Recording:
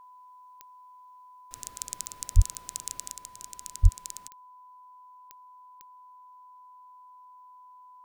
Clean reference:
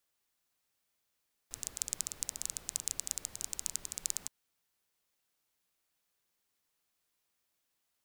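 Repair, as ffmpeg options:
-filter_complex "[0:a]adeclick=t=4,bandreject=f=1k:w=30,asplit=3[a][b][c];[a]afade=t=out:st=2.35:d=0.02[d];[b]highpass=f=140:w=0.5412,highpass=f=140:w=1.3066,afade=t=in:st=2.35:d=0.02,afade=t=out:st=2.47:d=0.02[e];[c]afade=t=in:st=2.47:d=0.02[f];[d][e][f]amix=inputs=3:normalize=0,asplit=3[g][h][i];[g]afade=t=out:st=3.82:d=0.02[j];[h]highpass=f=140:w=0.5412,highpass=f=140:w=1.3066,afade=t=in:st=3.82:d=0.02,afade=t=out:st=3.94:d=0.02[k];[i]afade=t=in:st=3.94:d=0.02[l];[j][k][l]amix=inputs=3:normalize=0,asetnsamples=n=441:p=0,asendcmd='3.11 volume volume 4.5dB',volume=0dB"

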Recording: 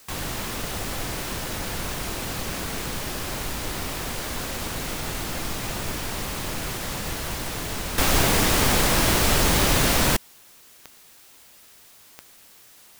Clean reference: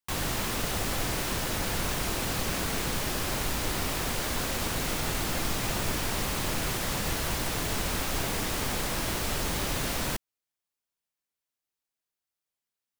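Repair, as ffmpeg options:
-af "adeclick=t=4,afwtdn=0.0028,asetnsamples=n=441:p=0,asendcmd='7.98 volume volume -10.5dB',volume=0dB"

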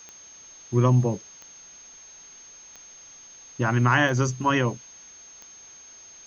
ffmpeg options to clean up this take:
-af "adeclick=t=4,bandreject=f=6.4k:w=30,afwtdn=0.0028"

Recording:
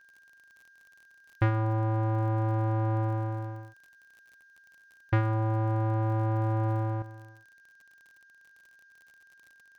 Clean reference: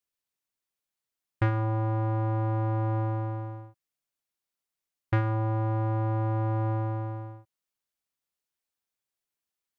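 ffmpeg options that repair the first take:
-af "adeclick=t=4,bandreject=f=1.6k:w=30,agate=range=-21dB:threshold=-51dB,asetnsamples=n=441:p=0,asendcmd='7.02 volume volume 10.5dB',volume=0dB"

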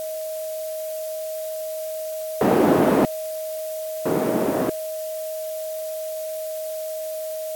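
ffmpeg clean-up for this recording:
-af "bandreject=f=630:w=30,afftdn=nr=30:nf=-30"

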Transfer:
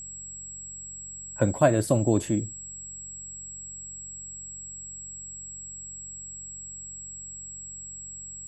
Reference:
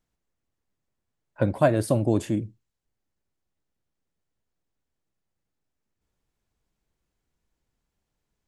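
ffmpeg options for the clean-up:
-af "bandreject=f=46:t=h:w=4,bandreject=f=92:t=h:w=4,bandreject=f=138:t=h:w=4,bandreject=f=184:t=h:w=4,bandreject=f=7.7k:w=30"

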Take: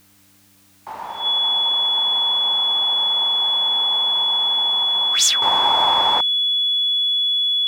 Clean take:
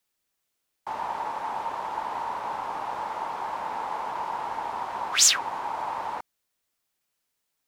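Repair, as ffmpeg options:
-af "bandreject=f=98.1:t=h:w=4,bandreject=f=196.2:t=h:w=4,bandreject=f=294.3:t=h:w=4,bandreject=f=3.4k:w=30,agate=range=-21dB:threshold=-46dB,asetnsamples=n=441:p=0,asendcmd='5.42 volume volume -12dB',volume=0dB"

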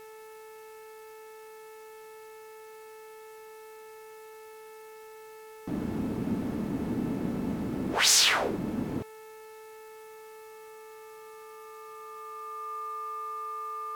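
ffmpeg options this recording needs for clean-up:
-af "bandreject=f=437.3:t=h:w=4,bandreject=f=874.6:t=h:w=4,bandreject=f=1.3119k:t=h:w=4,bandreject=f=1.7492k:t=h:w=4,bandreject=f=2.1865k:t=h:w=4,bandreject=f=2.6238k:t=h:w=4,bandreject=f=1.2k:w=30,afftdn=nr=30:nf=-48"

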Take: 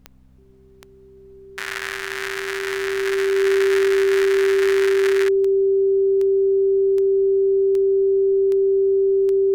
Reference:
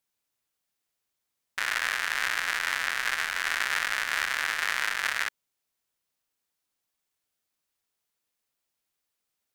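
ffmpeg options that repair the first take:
-af "adeclick=t=4,bandreject=f=64.9:t=h:w=4,bandreject=f=129.8:t=h:w=4,bandreject=f=194.7:t=h:w=4,bandreject=f=259.6:t=h:w=4,bandreject=f=390:w=30,agate=range=-21dB:threshold=-39dB"

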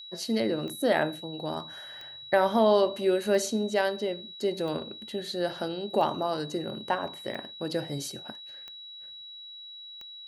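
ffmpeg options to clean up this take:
-af "adeclick=t=4,bandreject=f=3.9k:w=30"

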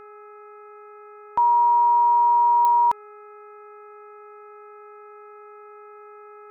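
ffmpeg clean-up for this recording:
-af "adeclick=t=4,bandreject=f=416.6:t=h:w=4,bandreject=f=833.2:t=h:w=4,bandreject=f=1.2498k:t=h:w=4,bandreject=f=1.6664k:t=h:w=4,bandreject=f=2.083k:t=h:w=4,bandreject=f=2.4996k:t=h:w=4,bandreject=f=1.3k:w=30"

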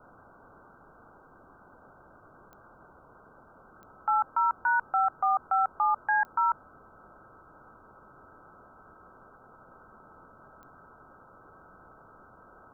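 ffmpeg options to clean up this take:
-af "adeclick=t=4,bandreject=f=1.3k:w=30,afwtdn=0.0063"

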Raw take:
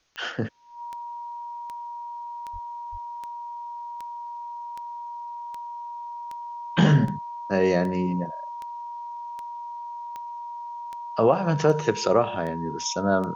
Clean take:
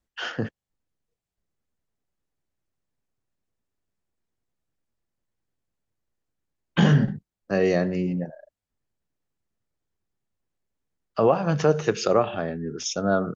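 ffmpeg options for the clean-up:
-filter_complex "[0:a]adeclick=t=4,bandreject=f=950:w=30,asplit=3[a][b][c];[a]afade=t=out:st=2.52:d=0.02[d];[b]highpass=f=140:w=0.5412,highpass=f=140:w=1.3066,afade=t=in:st=2.52:d=0.02,afade=t=out:st=2.64:d=0.02[e];[c]afade=t=in:st=2.64:d=0.02[f];[d][e][f]amix=inputs=3:normalize=0,asplit=3[g][h][i];[g]afade=t=out:st=2.91:d=0.02[j];[h]highpass=f=140:w=0.5412,highpass=f=140:w=1.3066,afade=t=in:st=2.91:d=0.02,afade=t=out:st=3.03:d=0.02[k];[i]afade=t=in:st=3.03:d=0.02[l];[j][k][l]amix=inputs=3:normalize=0,agate=range=-21dB:threshold=-28dB"

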